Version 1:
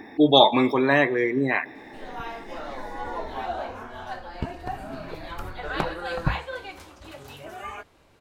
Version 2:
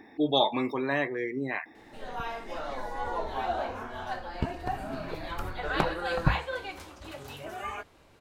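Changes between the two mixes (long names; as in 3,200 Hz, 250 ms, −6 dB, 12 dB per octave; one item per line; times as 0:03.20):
speech −8.5 dB
reverb: off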